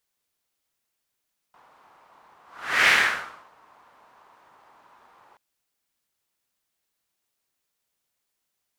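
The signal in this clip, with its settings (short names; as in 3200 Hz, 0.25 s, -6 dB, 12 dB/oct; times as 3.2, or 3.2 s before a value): whoosh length 3.83 s, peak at 1.34, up 0.48 s, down 0.69 s, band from 1000 Hz, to 2000 Hz, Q 2.9, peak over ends 39 dB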